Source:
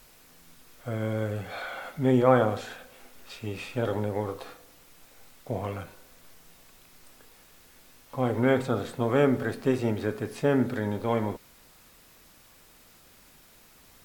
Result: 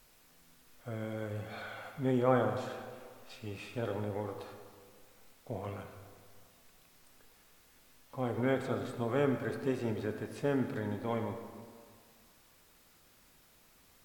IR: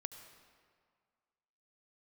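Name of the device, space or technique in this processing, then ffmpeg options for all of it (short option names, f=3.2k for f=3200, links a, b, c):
stairwell: -filter_complex "[1:a]atrim=start_sample=2205[a];[0:a][a]afir=irnorm=-1:irlink=0,volume=-4.5dB"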